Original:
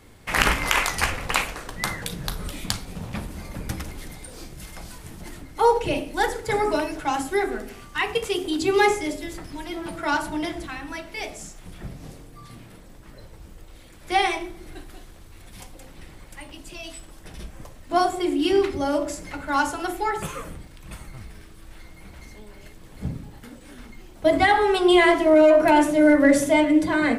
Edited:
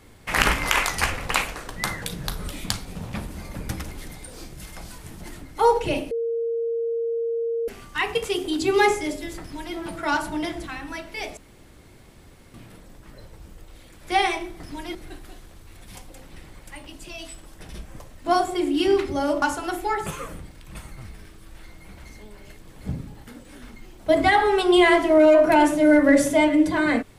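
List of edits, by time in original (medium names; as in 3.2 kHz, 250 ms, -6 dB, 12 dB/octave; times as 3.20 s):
6.11–7.68 s: bleep 462 Hz -22.5 dBFS
9.41–9.76 s: copy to 14.60 s
11.37–12.54 s: room tone
19.07–19.58 s: delete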